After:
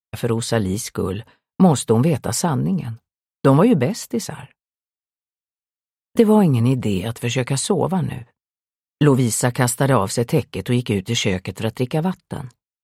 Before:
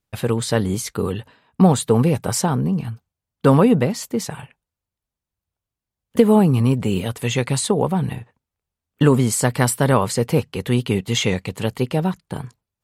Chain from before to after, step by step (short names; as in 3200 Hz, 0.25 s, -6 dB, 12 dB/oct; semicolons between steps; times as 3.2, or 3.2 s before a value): expander -39 dBFS